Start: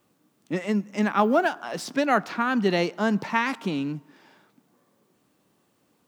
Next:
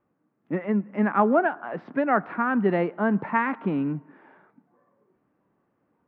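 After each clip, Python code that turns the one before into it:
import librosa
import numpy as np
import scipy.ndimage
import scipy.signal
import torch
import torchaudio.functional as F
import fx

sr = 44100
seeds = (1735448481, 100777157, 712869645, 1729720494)

y = scipy.signal.sosfilt(scipy.signal.butter(4, 1900.0, 'lowpass', fs=sr, output='sos'), x)
y = fx.noise_reduce_blind(y, sr, reduce_db=7)
y = fx.rider(y, sr, range_db=10, speed_s=2.0)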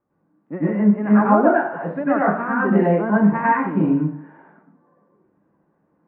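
y = scipy.signal.sosfilt(scipy.signal.butter(2, 1700.0, 'lowpass', fs=sr, output='sos'), x)
y = fx.rev_plate(y, sr, seeds[0], rt60_s=0.5, hf_ratio=0.8, predelay_ms=85, drr_db=-7.5)
y = F.gain(torch.from_numpy(y), -2.5).numpy()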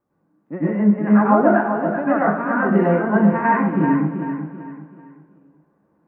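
y = fx.echo_feedback(x, sr, ms=385, feedback_pct=35, wet_db=-8)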